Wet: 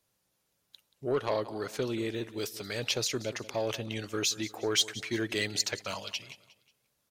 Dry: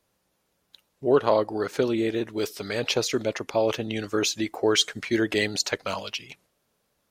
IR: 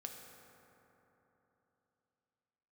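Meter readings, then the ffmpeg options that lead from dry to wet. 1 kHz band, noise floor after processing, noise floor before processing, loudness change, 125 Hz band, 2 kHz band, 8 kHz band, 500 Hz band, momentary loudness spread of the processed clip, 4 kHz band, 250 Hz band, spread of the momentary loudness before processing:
-9.0 dB, -78 dBFS, -74 dBFS, -6.5 dB, -4.0 dB, -6.0 dB, -2.0 dB, -9.0 dB, 8 LU, -4.0 dB, -8.5 dB, 9 LU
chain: -filter_complex "[0:a]equalizer=f=120:w=2.3:g=6.5,asplit=2[s0][s1];[s1]aecho=0:1:180|360|540:0.126|0.0529|0.0222[s2];[s0][s2]amix=inputs=2:normalize=0,asoftclip=type=tanh:threshold=0.251,highshelf=f=2500:g=8,volume=0.376"

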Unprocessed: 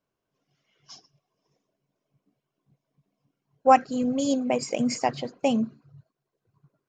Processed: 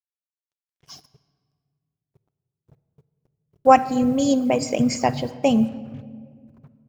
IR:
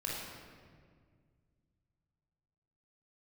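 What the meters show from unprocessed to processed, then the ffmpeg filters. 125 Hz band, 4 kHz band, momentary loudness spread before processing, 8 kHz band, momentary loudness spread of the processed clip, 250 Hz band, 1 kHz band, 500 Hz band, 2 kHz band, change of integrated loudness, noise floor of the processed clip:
+10.0 dB, +4.0 dB, 8 LU, +4.0 dB, 14 LU, +6.0 dB, +3.5 dB, +5.0 dB, +4.0 dB, +5.0 dB, under -85 dBFS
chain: -filter_complex "[0:a]equalizer=f=76:t=o:w=1.5:g=15,acrusher=bits=8:mix=0:aa=0.5,asplit=2[s0][s1];[1:a]atrim=start_sample=2205[s2];[s1][s2]afir=irnorm=-1:irlink=0,volume=0.15[s3];[s0][s3]amix=inputs=2:normalize=0,volume=1.41"

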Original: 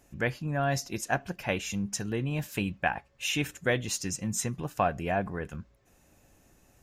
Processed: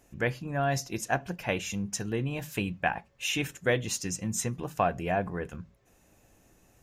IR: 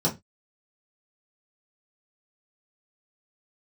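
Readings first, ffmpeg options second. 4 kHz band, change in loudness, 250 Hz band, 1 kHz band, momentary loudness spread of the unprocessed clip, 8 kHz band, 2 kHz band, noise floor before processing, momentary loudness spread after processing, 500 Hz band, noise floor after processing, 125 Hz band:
0.0 dB, 0.0 dB, -0.5 dB, +0.5 dB, 4 LU, 0.0 dB, 0.0 dB, -64 dBFS, 5 LU, +1.0 dB, -64 dBFS, -0.5 dB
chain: -filter_complex "[0:a]asplit=2[s0][s1];[1:a]atrim=start_sample=2205[s2];[s1][s2]afir=irnorm=-1:irlink=0,volume=0.0398[s3];[s0][s3]amix=inputs=2:normalize=0"

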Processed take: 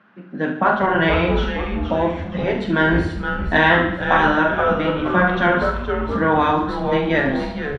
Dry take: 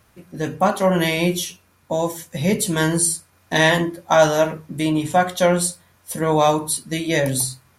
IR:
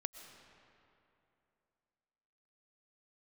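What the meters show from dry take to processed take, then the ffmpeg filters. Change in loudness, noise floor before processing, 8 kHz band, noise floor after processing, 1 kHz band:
+1.0 dB, -58 dBFS, under -30 dB, -32 dBFS, +3.0 dB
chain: -filter_complex "[0:a]highpass=f=190:w=0.5412,highpass=f=190:w=1.3066,equalizer=f=200:t=q:w=4:g=10,equalizer=f=470:t=q:w=4:g=-3,equalizer=f=1500:t=q:w=4:g=9,equalizer=f=2300:t=q:w=4:g=-5,lowpass=f=2900:w=0.5412,lowpass=f=2900:w=1.3066,asplit=2[s0][s1];[s1]adelay=43,volume=0.398[s2];[s0][s2]amix=inputs=2:normalize=0,asplit=2[s3][s4];[s4]asplit=6[s5][s6][s7][s8][s9][s10];[s5]adelay=470,afreqshift=-130,volume=0.355[s11];[s6]adelay=940,afreqshift=-260,volume=0.182[s12];[s7]adelay=1410,afreqshift=-390,volume=0.0923[s13];[s8]adelay=1880,afreqshift=-520,volume=0.0473[s14];[s9]adelay=2350,afreqshift=-650,volume=0.024[s15];[s10]adelay=2820,afreqshift=-780,volume=0.0123[s16];[s11][s12][s13][s14][s15][s16]amix=inputs=6:normalize=0[s17];[s3][s17]amix=inputs=2:normalize=0,afftfilt=real='re*lt(hypot(re,im),1.12)':imag='im*lt(hypot(re,im),1.12)':win_size=1024:overlap=0.75,asplit=2[s18][s19];[s19]aecho=0:1:72|144|216|288|360|432:0.335|0.181|0.0977|0.0527|0.0285|0.0154[s20];[s18][s20]amix=inputs=2:normalize=0,volume=1.33"

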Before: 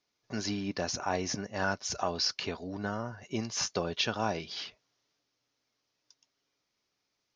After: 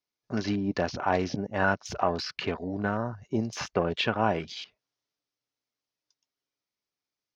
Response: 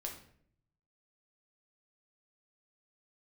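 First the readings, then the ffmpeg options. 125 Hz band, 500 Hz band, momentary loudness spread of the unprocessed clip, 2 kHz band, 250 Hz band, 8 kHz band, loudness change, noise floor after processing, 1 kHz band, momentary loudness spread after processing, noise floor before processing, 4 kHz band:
+6.0 dB, +6.0 dB, 8 LU, +5.0 dB, +6.0 dB, -8.5 dB, +4.0 dB, under -85 dBFS, +6.0 dB, 6 LU, -82 dBFS, -2.5 dB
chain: -filter_complex "[0:a]afwtdn=0.00708,acrossover=split=3300[s0][s1];[s1]acompressor=threshold=0.00251:ratio=5[s2];[s0][s2]amix=inputs=2:normalize=0,volume=2"

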